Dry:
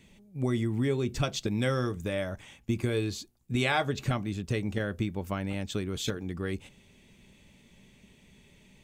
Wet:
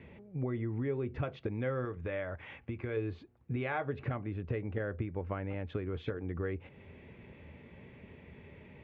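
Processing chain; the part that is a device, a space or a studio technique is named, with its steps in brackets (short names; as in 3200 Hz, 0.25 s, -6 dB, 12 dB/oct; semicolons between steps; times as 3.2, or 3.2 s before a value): bass amplifier (compressor 3:1, threshold -44 dBFS, peak gain reduction 15.5 dB; speaker cabinet 76–2200 Hz, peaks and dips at 81 Hz +8 dB, 200 Hz -7 dB, 480 Hz +5 dB); 1.85–2.97 tilt shelf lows -4 dB; gain +7.5 dB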